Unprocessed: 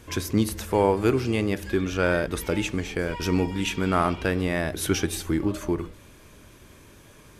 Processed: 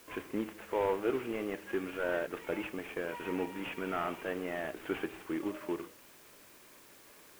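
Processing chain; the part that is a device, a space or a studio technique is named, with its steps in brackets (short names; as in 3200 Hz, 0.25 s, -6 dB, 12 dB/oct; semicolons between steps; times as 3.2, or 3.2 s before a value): army field radio (BPF 320–3300 Hz; CVSD 16 kbps; white noise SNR 22 dB); gain -6.5 dB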